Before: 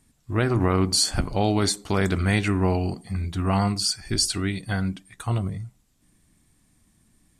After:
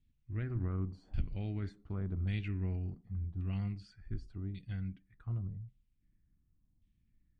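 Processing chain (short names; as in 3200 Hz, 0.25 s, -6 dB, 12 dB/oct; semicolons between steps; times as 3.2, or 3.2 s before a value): passive tone stack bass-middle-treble 10-0-1; LFO low-pass saw down 0.88 Hz 800–3300 Hz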